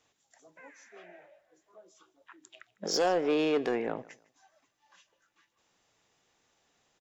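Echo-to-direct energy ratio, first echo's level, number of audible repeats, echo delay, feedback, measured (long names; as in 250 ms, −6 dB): −21.0 dB, −21.5 dB, 2, 154 ms, 25%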